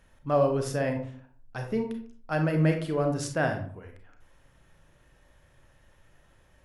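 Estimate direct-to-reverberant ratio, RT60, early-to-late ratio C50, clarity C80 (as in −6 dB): 4.0 dB, 0.50 s, 7.5 dB, 11.5 dB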